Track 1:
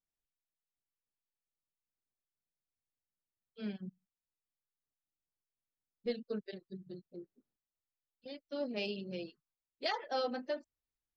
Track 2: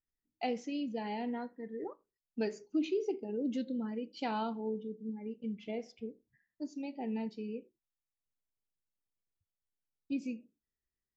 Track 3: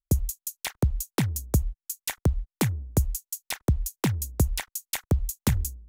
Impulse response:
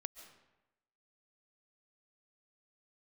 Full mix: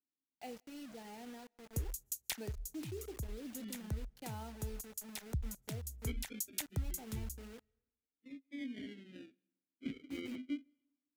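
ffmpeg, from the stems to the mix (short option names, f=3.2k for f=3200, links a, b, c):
-filter_complex "[0:a]acrusher=samples=39:mix=1:aa=0.000001:lfo=1:lforange=23.4:lforate=0.22,asplit=3[a][b][c];[a]bandpass=f=270:t=q:w=8,volume=0dB[d];[b]bandpass=f=2.29k:t=q:w=8,volume=-6dB[e];[c]bandpass=f=3.01k:t=q:w=8,volume=-9dB[f];[d][e][f]amix=inputs=3:normalize=0,volume=3dB,asplit=2[g][h];[h]volume=-19dB[i];[1:a]acrusher=bits=6:mix=0:aa=0.000001,volume=-13.5dB,asplit=3[j][k][l];[k]volume=-20dB[m];[2:a]acrossover=split=180|3000[n][o][p];[o]acompressor=threshold=-43dB:ratio=2[q];[n][q][p]amix=inputs=3:normalize=0,alimiter=limit=-16.5dB:level=0:latency=1:release=181,adelay=1650,volume=-6dB,asplit=2[r][s];[s]volume=-24dB[t];[l]apad=whole_len=332198[u];[r][u]sidechaincompress=threshold=-55dB:ratio=8:attack=16:release=543[v];[3:a]atrim=start_sample=2205[w];[i][m][t]amix=inputs=3:normalize=0[x];[x][w]afir=irnorm=-1:irlink=0[y];[g][j][v][y]amix=inputs=4:normalize=0,equalizer=f=1.1k:w=5.8:g=-3.5"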